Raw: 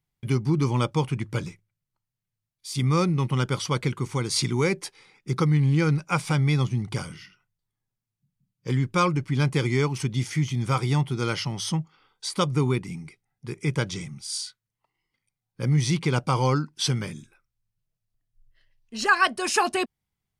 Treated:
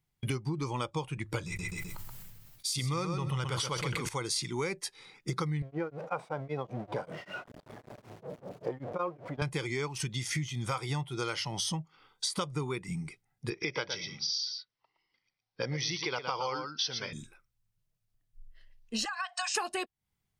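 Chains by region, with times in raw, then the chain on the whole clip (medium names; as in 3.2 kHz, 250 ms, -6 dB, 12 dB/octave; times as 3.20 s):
1.46–4.09 s: feedback delay 128 ms, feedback 19%, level -6.5 dB + decay stretcher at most 25 dB/s
5.62–9.42 s: jump at every zero crossing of -29 dBFS + band-pass filter 560 Hz, Q 1.1 + tremolo of two beating tones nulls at 5.2 Hz
13.50–17.13 s: steep low-pass 5.8 kHz 96 dB/octave + tone controls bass -11 dB, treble +5 dB + delay 116 ms -8.5 dB
19.05–19.55 s: brick-wall FIR band-pass 680–8600 Hz + compression 16:1, threshold -32 dBFS
whole clip: spectral noise reduction 8 dB; dynamic bell 220 Hz, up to -7 dB, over -38 dBFS, Q 1.1; compression 8:1, threshold -40 dBFS; trim +9 dB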